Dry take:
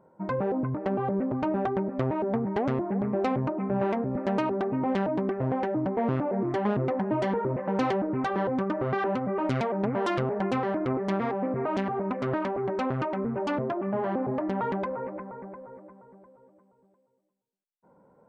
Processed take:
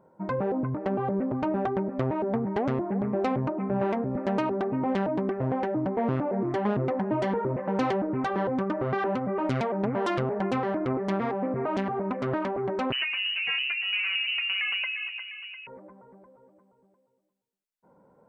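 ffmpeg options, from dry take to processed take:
-filter_complex "[0:a]asettb=1/sr,asplit=3[a][b][c];[a]atrim=end=12.924[d];[b]atrim=start=12.92:end=15.67,asetpts=PTS-STARTPTS,afade=t=in:d=0.004:c=qsin,afade=t=out:st=2.746:d=0.004:c=qsin,lowpass=f=2.6k:t=q:w=0.5098,lowpass=f=2.6k:t=q:w=0.6013,lowpass=f=2.6k:t=q:w=0.9,lowpass=f=2.6k:t=q:w=2.563,afreqshift=-3100[e];[c]atrim=start=15.666[f];[d][e]acrossfade=d=0.004:c1=hsin:c2=qsin[g];[g][f]acrossfade=d=0.004:c1=qsin:c2=hsin"

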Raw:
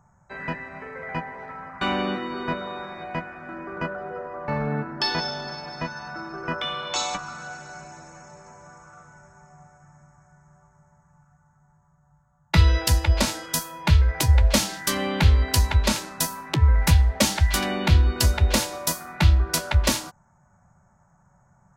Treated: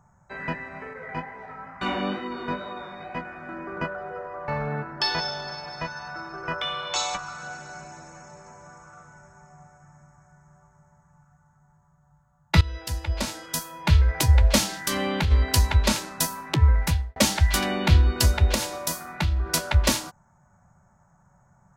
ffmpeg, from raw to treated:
-filter_complex "[0:a]asettb=1/sr,asplit=3[a][b][c];[a]atrim=end=0.934[d];[b]atrim=start=0.93:end=3.25,asetpts=PTS-STARTPTS,afade=t=in:d=0.004:c=qsin,afade=t=out:st=2.316:d=0.004:c=qsin,flanger=delay=16:depth=4.5:speed=2.2[e];[c]atrim=start=3.246[f];[d][e]acrossfade=d=0.004:c1=hsin:c2=qsin[g];[g][f]acrossfade=d=0.004:c1=qsin:c2=hsin,asettb=1/sr,asplit=3[h][i][j];[h]atrim=end=3.844[k];[i]atrim=start=3.84:end=7.43,asetpts=PTS-STARTPTS,afade=t=in:d=0.004:c=qsin,afade=t=out:st=3.586:d=0.004:c=qsin,equalizer=f=250:w=1.5:g=-9.5[l];[j]atrim=start=7.426[m];[k][l]acrossfade=d=0.004:c1=hsin:c2=qsin[n];[n][m]acrossfade=d=0.004:c1=qsin:c2=hsin,asplit=3[o][p][q];[o]afade=t=out:st=14.77:d=0.02[r];[p]acompressor=threshold=-20dB:ratio=5:attack=3.2:release=140:knee=1:detection=peak,afade=t=in:st=14.77:d=0.02,afade=t=out:st=15.3:d=0.02[s];[q]afade=t=in:st=15.3:d=0.02[t];[r][s][t]amix=inputs=3:normalize=0,asettb=1/sr,asplit=3[u][v][w];[u]atrim=end=18.544[x];[v]atrim=start=18.54:end=19.46,asetpts=PTS-STARTPTS,afade=t=in:d=0.004:c=qsin,afade=t=out:st=0.916:d=0.004:c=qsin,acompressor=threshold=-22dB:ratio=3:attack=3.2:release=140:knee=1:detection=peak[y];[w]atrim=start=19.456[z];[x][y]acrossfade=d=0.004:c1=hsin:c2=qsin[aa];[aa][z]acrossfade=d=0.004:c1=qsin:c2=hsin,asplit=3[ab][ac][ad];[ab]atrim=end=12.61,asetpts=PTS-STARTPTS,afade=t=out:st=12.606:d=0.004:c=hsin:silence=0.125893[ae];[ac]atrim=start=12.61:end=17.16,asetpts=PTS-STARTPTS,afade=t=in:d=1.49:silence=0.125893,afade=t=out:st=4.05:d=0.5[af];[ad]atrim=start=17.16,asetpts=PTS-STARTPTS,afade=t=in:d=0.004:c=hsin[ag];[ae][af][ag]concat=n=3:v=0:a=1"

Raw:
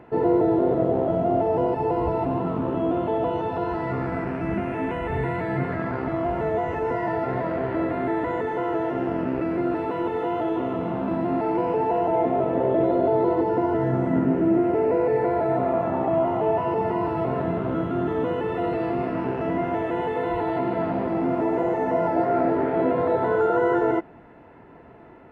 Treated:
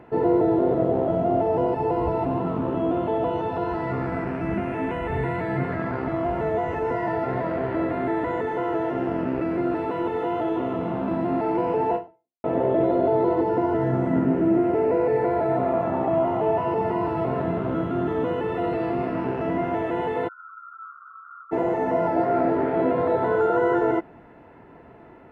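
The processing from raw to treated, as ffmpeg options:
-filter_complex "[0:a]asplit=3[a][b][c];[a]afade=t=out:st=20.27:d=0.02[d];[b]asuperpass=centerf=1300:order=20:qfactor=3,afade=t=in:st=20.27:d=0.02,afade=t=out:st=21.51:d=0.02[e];[c]afade=t=in:st=21.51:d=0.02[f];[d][e][f]amix=inputs=3:normalize=0,asplit=2[g][h];[g]atrim=end=12.44,asetpts=PTS-STARTPTS,afade=t=out:st=11.95:d=0.49:c=exp[i];[h]atrim=start=12.44,asetpts=PTS-STARTPTS,afade=t=in:d=0.004:c=hsin[j];[i][j]concat=n=2:v=0:a=1"

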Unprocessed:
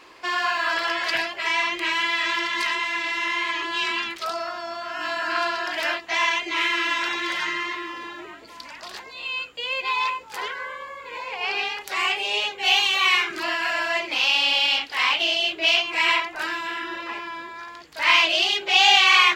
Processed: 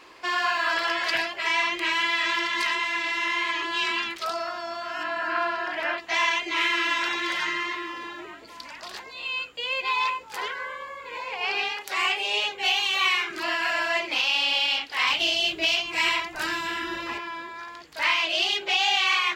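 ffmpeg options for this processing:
-filter_complex "[0:a]asettb=1/sr,asplit=3[a][b][c];[a]atrim=end=5.034[d];[b]atrim=start=5.03:end=5.98,asetpts=PTS-STARTPTS,afade=t=in:d=0.004:c=qsin,afade=t=out:st=0.946:d=0.004:c=qsin,acrossover=split=2600[e][f];[f]acompressor=threshold=-47dB:ratio=4:attack=1:release=60[g];[e][g]amix=inputs=2:normalize=0[h];[c]atrim=start=5.976[i];[d][h]acrossfade=d=0.004:c1=hsin:c2=qsin[j];[j][i]acrossfade=d=0.004:c1=qsin:c2=hsin,asettb=1/sr,asplit=3[k][l][m];[k]atrim=end=11.734[n];[l]atrim=start=11.73:end=12.49,asetpts=PTS-STARTPTS,afade=t=in:d=0.004:c=qsin,afade=t=out:st=0.756:d=0.004:c=qsin,highpass=f=190:p=1[o];[m]atrim=start=12.486[p];[n][o]acrossfade=d=0.004:c1=hsin:c2=qsin[q];[q][p]acrossfade=d=0.004:c1=qsin:c2=hsin,asettb=1/sr,asplit=3[r][s][t];[r]atrim=end=15.074[u];[s]atrim=start=15.07:end=17.18,asetpts=PTS-STARTPTS,afade=t=in:d=0.004:c=qsin,afade=t=out:st=2.106:d=0.004:c=qsin,bass=f=250:g=12,treble=f=4k:g=7[v];[t]atrim=start=17.176[w];[u][v]acrossfade=d=0.004:c1=hsin:c2=qsin[x];[x][w]acrossfade=d=0.004:c1=qsin:c2=hsin,alimiter=limit=-11.5dB:level=0:latency=1:release=407,volume=-1dB"

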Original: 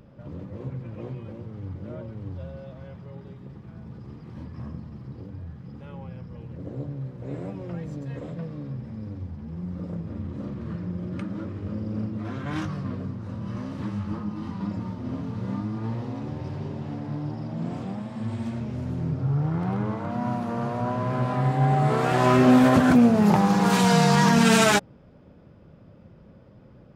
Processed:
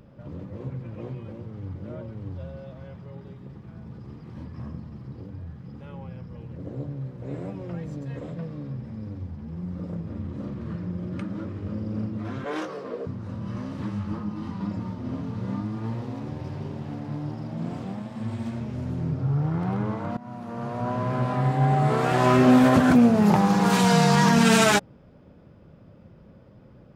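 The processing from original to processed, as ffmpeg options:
-filter_complex "[0:a]asettb=1/sr,asplit=3[a][b][c];[a]atrim=end=12.444[d];[b]atrim=start=12.44:end=13.07,asetpts=PTS-STARTPTS,afade=t=in:d=0.004:c=qsin,afade=t=out:st=0.626:d=0.004:c=qsin,highpass=f=450:t=q:w=4.3[e];[c]atrim=start=13.066[f];[d][e]acrossfade=d=0.004:c1=hsin:c2=qsin[g];[g][f]acrossfade=d=0.004:c1=qsin:c2=hsin,asettb=1/sr,asplit=3[h][i][j];[h]atrim=end=15.654[k];[i]atrim=start=15.65:end=18.77,asetpts=PTS-STARTPTS,afade=t=in:d=0.004:c=qsin,afade=t=out:st=3.116:d=0.004:c=qsin,aeval=exprs='sgn(val(0))*max(abs(val(0))-0.00316,0)':c=same[l];[j]atrim=start=18.766[m];[k][l]acrossfade=d=0.004:c1=hsin:c2=qsin[n];[n][m]acrossfade=d=0.004:c1=qsin:c2=hsin,asplit=2[o][p];[o]atrim=end=20.17,asetpts=PTS-STARTPTS,afade=t=out:st=20.166:d=0.004:c=hsin:silence=0.125893[q];[p]atrim=start=20.17,asetpts=PTS-STARTPTS,afade=t=in:d=0.79:silence=0.125893[r];[q][r]concat=n=2:v=0:a=1"

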